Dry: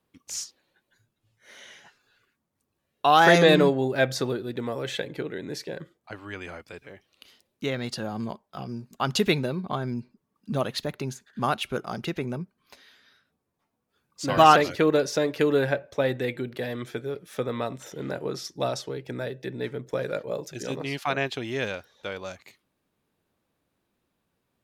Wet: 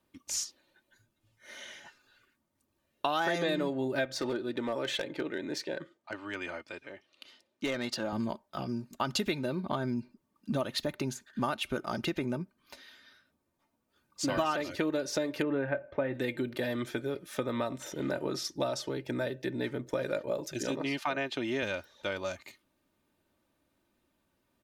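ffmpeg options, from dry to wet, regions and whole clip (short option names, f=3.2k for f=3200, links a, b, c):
-filter_complex "[0:a]asettb=1/sr,asplit=3[a][b][c];[a]atrim=end=4.054[d];[b]atrim=start=4.05:end=8.13,asetpts=PTS-STARTPTS,afade=t=in:d=0.004:c=qsin,afade=t=out:st=4.076:d=0.004:c=qsin,highpass=f=280:p=1,adynamicsmooth=sensitivity=7.5:basefreq=7.1k,volume=24.5dB,asoftclip=hard,volume=-24.5dB[e];[c]atrim=start=8.126[f];[d][e]acrossfade=d=0.004:c1=hsin:c2=qsin[g];[g][f]acrossfade=d=0.004:c1=qsin:c2=hsin,asettb=1/sr,asplit=3[h][i][j];[h]atrim=end=15.424[k];[i]atrim=start=15.42:end=16.14,asetpts=PTS-STARTPTS,afade=t=in:d=0.004:c=qsin,afade=t=out:st=0.716:d=0.004:c=qsin,lowpass=f=2.4k:w=0.5412,lowpass=f=2.4k:w=1.3066,asplit=2[l][m];[m]adelay=22,volume=-12dB[n];[l][n]amix=inputs=2:normalize=0,atrim=end_sample=31752[o];[j]atrim=start=16.136[p];[k][o]acrossfade=d=0.004:c1=hsin:c2=qsin[q];[q][p]acrossfade=d=0.004:c1=qsin:c2=hsin,asettb=1/sr,asplit=3[r][s][t];[r]atrim=end=20.704[u];[s]atrim=start=20.7:end=21.63,asetpts=PTS-STARTPTS,afade=t=in:d=0.004:c=qsin,afade=t=out:st=0.926:d=0.004:c=qsin,highpass=140,highshelf=f=6.3k:g=-7.5[v];[t]atrim=start=21.626[w];[u][v]acrossfade=d=0.004:c1=hsin:c2=qsin[x];[x][w]acrossfade=d=0.004:c1=qsin:c2=hsin,equalizer=f=150:t=o:w=0.43:g=3,aecho=1:1:3.3:0.48,acompressor=threshold=-28dB:ratio=6"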